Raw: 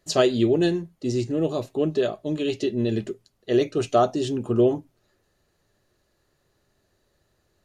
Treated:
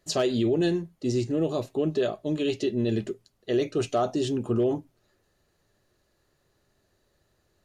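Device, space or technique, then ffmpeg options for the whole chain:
clipper into limiter: -af "asoftclip=type=hard:threshold=-10.5dB,alimiter=limit=-16dB:level=0:latency=1:release=33,volume=-1dB"

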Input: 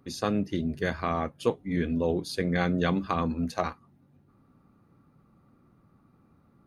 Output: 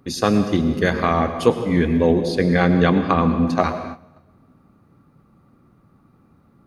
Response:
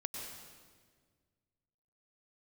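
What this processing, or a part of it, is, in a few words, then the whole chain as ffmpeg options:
keyed gated reverb: -filter_complex "[0:a]asettb=1/sr,asplit=3[link_01][link_02][link_03];[link_01]atrim=end=2.234[link_04];[link_02]atrim=start=2.23:end=3.61,asetpts=PTS-STARTPTS,afade=type=in:duration=0.004:curve=qsin,afade=type=out:start_time=1.376:duration=0.004:curve=qsin,aemphasis=mode=reproduction:type=50kf[link_05];[link_03]atrim=start=3.606[link_06];[link_04][link_05]acrossfade=duration=0.004:curve1=hsin:curve2=qsin[link_07];[link_07][link_06]acrossfade=duration=0.004:curve1=qsin:curve2=hsin,asplit=3[link_08][link_09][link_10];[1:a]atrim=start_sample=2205[link_11];[link_09][link_11]afir=irnorm=-1:irlink=0[link_12];[link_10]apad=whole_len=294037[link_13];[link_12][link_13]sidechaingate=range=-14dB:threshold=-57dB:ratio=16:detection=peak,volume=-1dB[link_14];[link_08][link_14]amix=inputs=2:normalize=0,volume=5.5dB"

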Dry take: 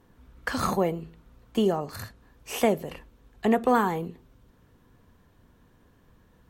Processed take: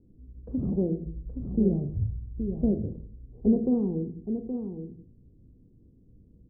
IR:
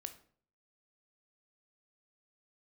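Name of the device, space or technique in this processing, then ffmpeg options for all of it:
next room: -filter_complex "[0:a]lowpass=1200,asplit=3[link_01][link_02][link_03];[link_01]afade=type=out:start_time=1.05:duration=0.02[link_04];[link_02]asubboost=boost=11.5:cutoff=110,afade=type=in:start_time=1.05:duration=0.02,afade=type=out:start_time=2.71:duration=0.02[link_05];[link_03]afade=type=in:start_time=2.71:duration=0.02[link_06];[link_04][link_05][link_06]amix=inputs=3:normalize=0,lowpass=frequency=370:width=0.5412,lowpass=frequency=370:width=1.3066[link_07];[1:a]atrim=start_sample=2205[link_08];[link_07][link_08]afir=irnorm=-1:irlink=0,aecho=1:1:821:0.398,volume=6.5dB"

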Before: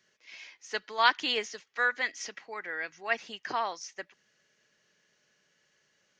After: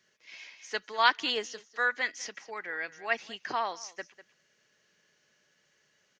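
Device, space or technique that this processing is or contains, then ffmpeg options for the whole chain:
ducked delay: -filter_complex "[0:a]asettb=1/sr,asplit=3[link_01][link_02][link_03];[link_01]atrim=end=1.304[link_04];[link_02]atrim=start=1.3:end=1.87,asetpts=PTS-STARTPTS,afade=type=in:duration=0.004:curve=qsin,afade=type=out:start_time=0.566:duration=0.004:curve=qsin,equalizer=frequency=2300:width=4.5:gain=-10[link_05];[link_03]atrim=start=1.866[link_06];[link_04][link_05]acrossfade=duration=0.004:curve1=hsin:curve2=qsin[link_07];[link_07][link_06]acrossfade=duration=0.004:curve1=qsin:curve2=hsin,asplit=3[link_08][link_09][link_10];[link_09]adelay=198,volume=-6.5dB[link_11];[link_10]apad=whole_len=281790[link_12];[link_11][link_12]sidechaincompress=threshold=-47dB:ratio=6:attack=43:release=588[link_13];[link_08][link_13]amix=inputs=2:normalize=0"

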